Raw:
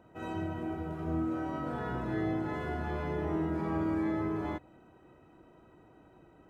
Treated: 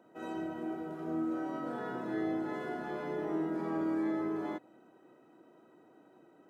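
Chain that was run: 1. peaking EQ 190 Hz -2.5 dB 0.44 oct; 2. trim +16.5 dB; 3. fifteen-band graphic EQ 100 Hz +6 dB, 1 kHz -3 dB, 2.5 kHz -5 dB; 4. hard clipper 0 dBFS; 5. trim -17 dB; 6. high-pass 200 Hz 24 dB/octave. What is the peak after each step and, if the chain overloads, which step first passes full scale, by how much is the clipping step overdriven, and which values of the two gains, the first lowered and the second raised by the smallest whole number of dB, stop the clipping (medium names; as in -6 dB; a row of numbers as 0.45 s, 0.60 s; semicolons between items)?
-22.0 dBFS, -5.5 dBFS, -4.5 dBFS, -4.5 dBFS, -21.5 dBFS, -23.0 dBFS; nothing clips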